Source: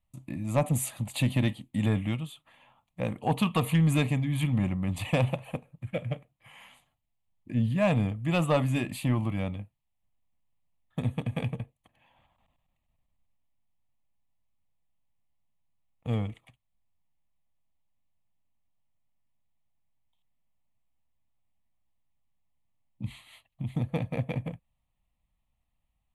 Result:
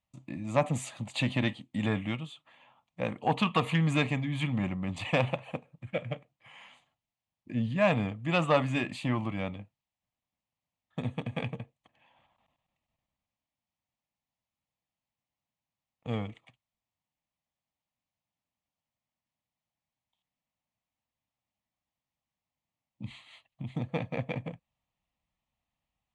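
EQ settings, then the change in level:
high-pass filter 200 Hz 6 dB per octave
low-pass filter 7,100 Hz 24 dB per octave
dynamic equaliser 1,600 Hz, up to +4 dB, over −41 dBFS, Q 0.73
0.0 dB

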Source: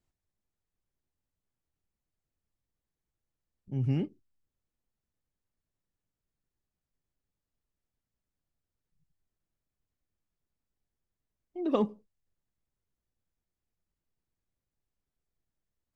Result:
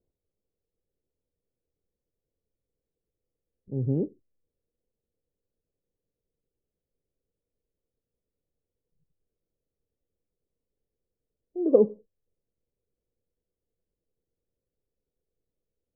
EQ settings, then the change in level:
low-pass with resonance 480 Hz, resonance Q 4.9
0.0 dB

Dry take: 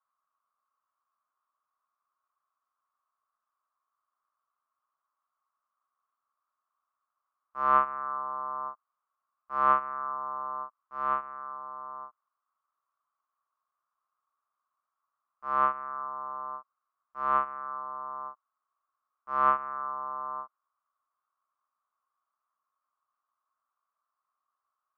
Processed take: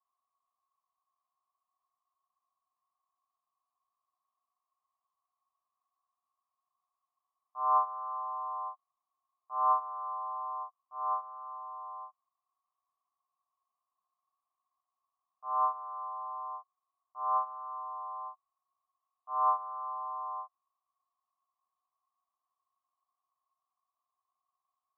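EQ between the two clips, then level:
formant resonators in series a
low-shelf EQ 150 Hz −8 dB
+7.0 dB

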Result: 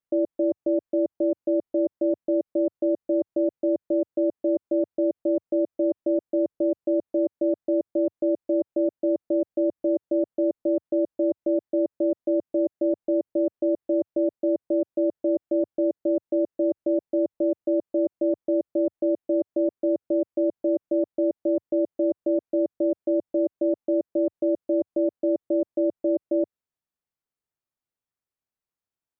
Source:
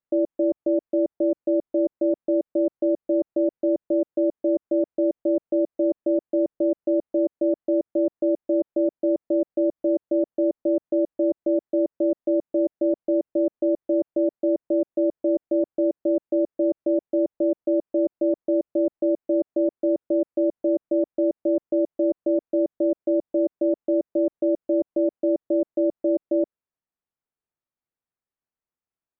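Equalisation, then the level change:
parametric band 100 Hz +3.5 dB 0.82 octaves
−1.5 dB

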